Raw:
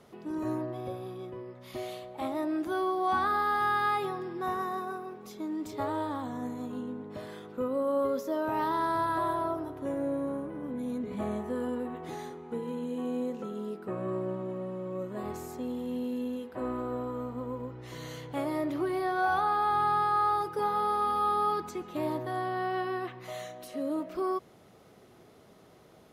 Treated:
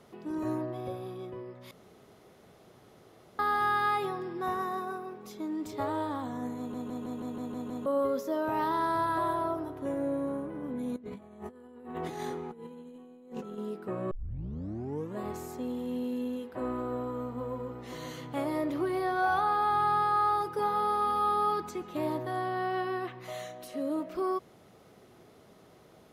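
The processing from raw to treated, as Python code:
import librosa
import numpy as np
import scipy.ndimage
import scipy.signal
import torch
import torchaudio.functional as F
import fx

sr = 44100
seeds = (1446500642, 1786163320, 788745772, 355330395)

y = fx.over_compress(x, sr, threshold_db=-41.0, ratio=-0.5, at=(10.96, 13.58))
y = fx.echo_throw(y, sr, start_s=16.86, length_s=0.86, ms=520, feedback_pct=65, wet_db=-8.5)
y = fx.edit(y, sr, fx.room_tone_fill(start_s=1.71, length_s=1.68),
    fx.stutter_over(start_s=6.58, slice_s=0.16, count=8),
    fx.tape_start(start_s=14.11, length_s=1.06), tone=tone)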